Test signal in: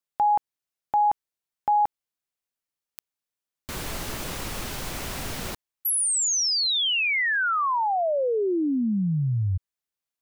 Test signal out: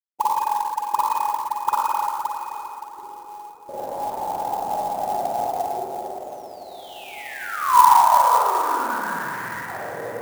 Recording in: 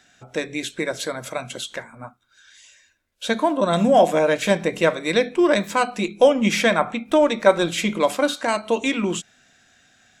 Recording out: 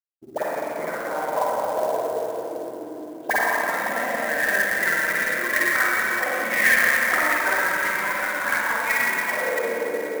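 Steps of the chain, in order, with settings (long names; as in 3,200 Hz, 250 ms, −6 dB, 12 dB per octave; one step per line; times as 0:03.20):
spectral magnitudes quantised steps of 30 dB
spectral tilt −1.5 dB per octave
in parallel at +1 dB: downward compressor 8 to 1, threshold −29 dBFS
on the sum: slack as between gear wheels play −25 dBFS
on a send: feedback delay with all-pass diffusion 699 ms, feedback 67%, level −14.5 dB
on the sum: envelope filter 290–1,900 Hz, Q 13, up, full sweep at −15.5 dBFS
spring reverb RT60 3.8 s, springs 43/51/56 ms, chirp 25 ms, DRR −9 dB
converter with an unsteady clock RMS 0.024 ms
level +8.5 dB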